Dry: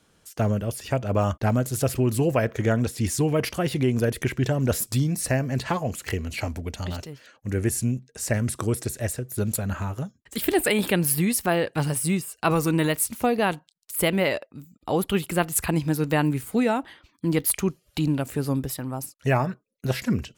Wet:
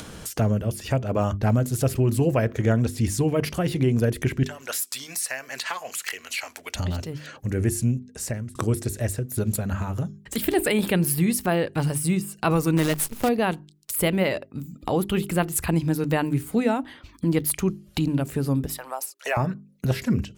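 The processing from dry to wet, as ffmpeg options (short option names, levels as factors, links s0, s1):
-filter_complex "[0:a]asettb=1/sr,asplit=3[s0][s1][s2];[s0]atrim=end=4.434[s3];[s1]atrim=start=4.43:end=6.75,asetpts=PTS-STARTPTS,afade=t=in:d=0.004:c=qsin,afade=t=out:st=2.316:d=0.004:c=qsin,highpass=1300[s4];[s2]atrim=start=6.746[s5];[s3][s4]acrossfade=d=0.004:c1=hsin:c2=qsin[s6];[s6][s5]acrossfade=d=0.004:c1=qsin:c2=hsin,asettb=1/sr,asplit=3[s7][s8][s9];[s7]atrim=end=12.774[s10];[s8]atrim=start=12.77:end=13.29,asetpts=PTS-STARTPTS,afade=t=in:d=0.004:c=qsin,afade=t=out:st=0.516:d=0.004:c=qsin,acrusher=bits=5:dc=4:mix=0:aa=0.000001[s11];[s9]atrim=start=13.286[s12];[s10][s11]acrossfade=d=0.004:c1=hsin:c2=qsin[s13];[s13][s12]acrossfade=d=0.004:c1=qsin:c2=hsin,asettb=1/sr,asplit=3[s14][s15][s16];[s14]atrim=end=18.664[s17];[s15]atrim=start=18.66:end=19.37,asetpts=PTS-STARTPTS,afade=t=in:d=0.004:c=qsin,afade=t=out:st=0.706:d=0.004:c=qsin,highpass=f=580:w=0.5412,highpass=f=580:w=1.3066[s18];[s16]atrim=start=19.366[s19];[s17][s18]acrossfade=d=0.004:c1=hsin:c2=qsin[s20];[s20][s19]acrossfade=d=0.004:c1=qsin:c2=hsin,asplit=2[s21][s22];[s21]atrim=end=8.55,asetpts=PTS-STARTPTS,afade=t=out:st=7.89:d=0.66[s23];[s22]atrim=start=8.55,asetpts=PTS-STARTPTS,afade=t=in:d=0.004:c=hsin[s24];[s23][s24]concat=n=2:v=0:a=1,lowshelf=f=340:g=6,bandreject=f=50:t=h:w=6,bandreject=f=100:t=h:w=6,bandreject=f=150:t=h:w=6,bandreject=f=200:t=h:w=6,bandreject=f=250:t=h:w=6,bandreject=f=300:t=h:w=6,bandreject=f=350:t=h:w=6,bandreject=f=400:t=h:w=6,acompressor=mode=upward:threshold=0.1:ratio=2.5,volume=0.794"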